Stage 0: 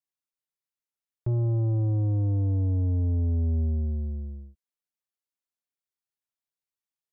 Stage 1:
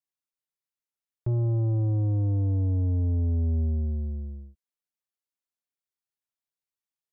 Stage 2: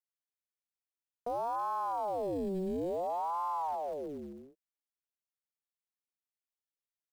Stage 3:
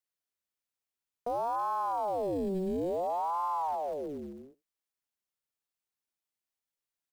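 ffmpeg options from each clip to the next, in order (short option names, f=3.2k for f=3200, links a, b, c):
-af anull
-af "acrusher=bits=5:mode=log:mix=0:aa=0.000001,aeval=exprs='val(0)*sin(2*PI*620*n/s+620*0.55/0.58*sin(2*PI*0.58*n/s))':c=same,volume=-7dB"
-af "aecho=1:1:78:0.0668,volume=2.5dB"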